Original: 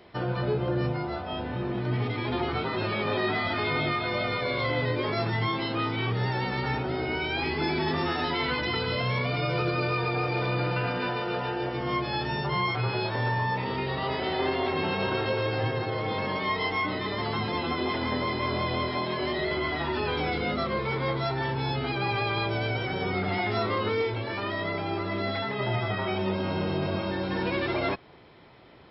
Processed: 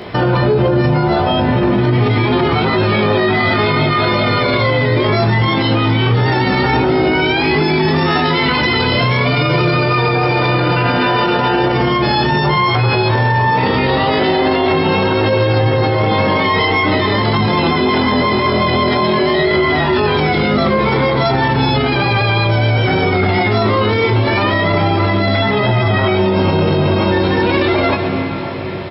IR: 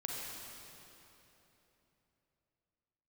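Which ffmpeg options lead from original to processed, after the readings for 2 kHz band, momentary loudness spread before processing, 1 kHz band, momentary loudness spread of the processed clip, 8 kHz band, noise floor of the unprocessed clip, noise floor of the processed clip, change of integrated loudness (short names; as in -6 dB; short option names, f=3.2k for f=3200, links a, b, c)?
+13.5 dB, 3 LU, +14.5 dB, 1 LU, n/a, -33 dBFS, -15 dBFS, +14.5 dB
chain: -filter_complex "[0:a]highpass=f=140:p=1,lowshelf=f=200:g=9,asplit=2[a][b];[b]adelay=19,volume=-6dB[c];[a][c]amix=inputs=2:normalize=0,asplit=2[d][e];[1:a]atrim=start_sample=2205,asetrate=23373,aresample=44100,adelay=118[f];[e][f]afir=irnorm=-1:irlink=0,volume=-21dB[g];[d][g]amix=inputs=2:normalize=0,alimiter=level_in=26.5dB:limit=-1dB:release=50:level=0:latency=1,volume=-5dB"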